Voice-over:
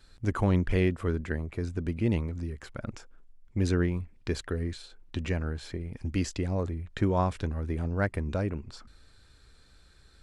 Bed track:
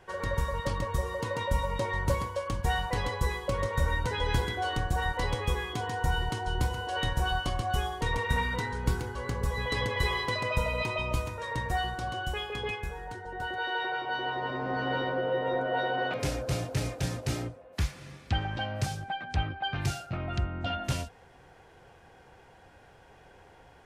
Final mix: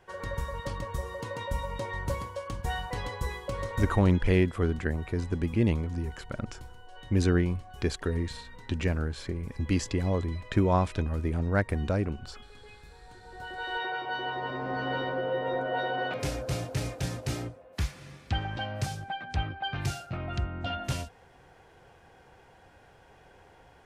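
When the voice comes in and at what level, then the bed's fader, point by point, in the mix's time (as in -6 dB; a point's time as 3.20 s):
3.55 s, +2.0 dB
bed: 3.84 s -4 dB
4.25 s -18.5 dB
12.69 s -18.5 dB
13.78 s -1 dB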